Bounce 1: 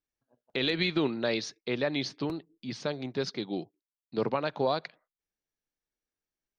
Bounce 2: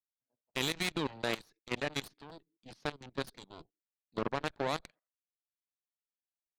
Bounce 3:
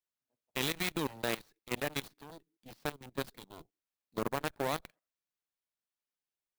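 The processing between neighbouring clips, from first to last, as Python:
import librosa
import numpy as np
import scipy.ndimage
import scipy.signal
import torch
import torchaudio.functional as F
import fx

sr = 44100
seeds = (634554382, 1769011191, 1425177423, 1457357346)

y1 = fx.cheby_harmonics(x, sr, harmonics=(3, 6, 7, 8), levels_db=(-20, -27, -17, -23), full_scale_db=-15.0)
y1 = fx.dynamic_eq(y1, sr, hz=5400.0, q=3.2, threshold_db=-54.0, ratio=4.0, max_db=-4)
y1 = fx.level_steps(y1, sr, step_db=17)
y1 = F.gain(torch.from_numpy(y1), 1.5).numpy()
y2 = fx.clock_jitter(y1, sr, seeds[0], jitter_ms=0.03)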